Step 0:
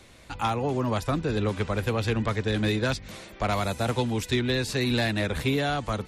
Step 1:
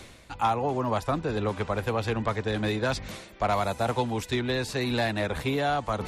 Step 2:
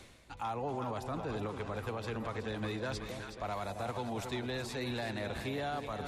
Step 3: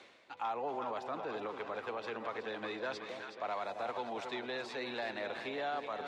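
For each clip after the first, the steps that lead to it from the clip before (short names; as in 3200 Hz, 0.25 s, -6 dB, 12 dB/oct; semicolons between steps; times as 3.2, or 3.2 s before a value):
dynamic EQ 830 Hz, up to +8 dB, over -42 dBFS, Q 0.91; reverse; upward compressor, threshold -24 dBFS; reverse; gain -4 dB
split-band echo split 810 Hz, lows 0.269 s, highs 0.372 s, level -9 dB; limiter -19.5 dBFS, peak gain reduction 6 dB; gain -8.5 dB
BPF 390–3900 Hz; gain +1 dB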